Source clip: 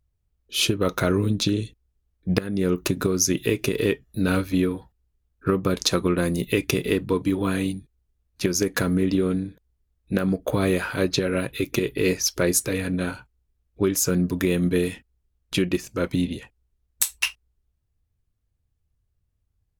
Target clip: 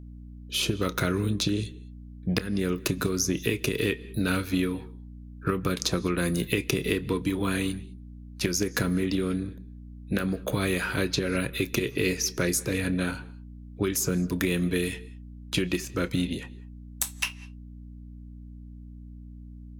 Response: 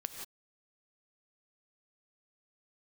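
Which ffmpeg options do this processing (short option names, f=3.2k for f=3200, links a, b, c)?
-filter_complex "[0:a]acrossover=split=410|1300[a][b][c];[a]acompressor=threshold=-27dB:ratio=4[d];[b]acompressor=threshold=-39dB:ratio=4[e];[c]acompressor=threshold=-28dB:ratio=4[f];[d][e][f]amix=inputs=3:normalize=0,aeval=exprs='val(0)+0.00708*(sin(2*PI*60*n/s)+sin(2*PI*2*60*n/s)/2+sin(2*PI*3*60*n/s)/3+sin(2*PI*4*60*n/s)/4+sin(2*PI*5*60*n/s)/5)':c=same,asplit=2[g][h];[1:a]atrim=start_sample=2205,lowpass=8.1k,adelay=29[i];[h][i]afir=irnorm=-1:irlink=0,volume=-14.5dB[j];[g][j]amix=inputs=2:normalize=0,volume=1.5dB"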